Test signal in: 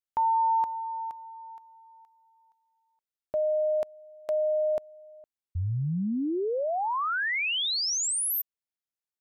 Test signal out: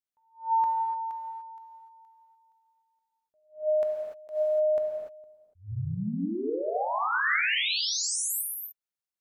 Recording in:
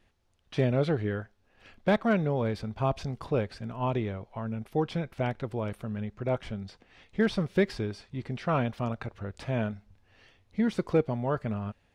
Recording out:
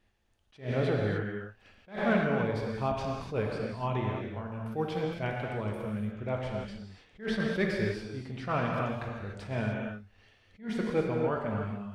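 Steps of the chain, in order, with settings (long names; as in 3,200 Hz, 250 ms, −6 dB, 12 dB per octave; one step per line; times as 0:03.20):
dynamic equaliser 1,800 Hz, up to +5 dB, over −44 dBFS, Q 1.1
reverb whose tail is shaped and stops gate 320 ms flat, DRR −0.5 dB
level that may rise only so fast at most 200 dB per second
level −5 dB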